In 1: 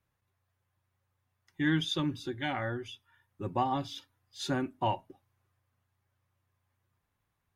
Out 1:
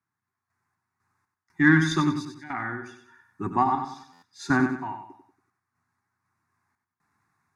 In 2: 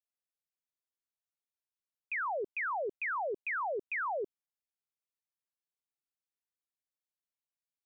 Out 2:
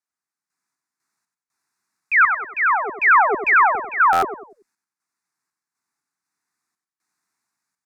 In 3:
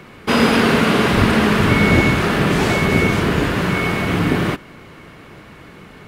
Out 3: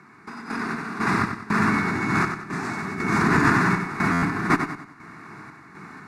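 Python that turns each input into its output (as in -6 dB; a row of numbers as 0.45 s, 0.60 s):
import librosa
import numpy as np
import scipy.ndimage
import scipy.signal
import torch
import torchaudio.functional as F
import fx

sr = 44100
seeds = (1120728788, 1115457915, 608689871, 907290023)

y = scipy.signal.sosfilt(scipy.signal.butter(2, 200.0, 'highpass', fs=sr, output='sos'), x)
y = fx.high_shelf(y, sr, hz=7500.0, db=7.0)
y = fx.over_compress(y, sr, threshold_db=-22.0, ratio=-1.0)
y = 10.0 ** (-12.5 / 20.0) * np.tanh(y / 10.0 ** (-12.5 / 20.0))
y = fx.tremolo_random(y, sr, seeds[0], hz=4.0, depth_pct=90)
y = fx.cheby_harmonics(y, sr, harmonics=(2, 3, 7), levels_db=(-27, -19, -42), full_scale_db=-14.0)
y = fx.air_absorb(y, sr, metres=84.0)
y = fx.fixed_phaser(y, sr, hz=1300.0, stages=4)
y = fx.echo_feedback(y, sr, ms=94, feedback_pct=38, wet_db=-7.5)
y = fx.buffer_glitch(y, sr, at_s=(4.12,), block=512, repeats=8)
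y = y * 10.0 ** (-6 / 20.0) / np.max(np.abs(y))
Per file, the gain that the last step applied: +18.5 dB, +29.5 dB, +8.0 dB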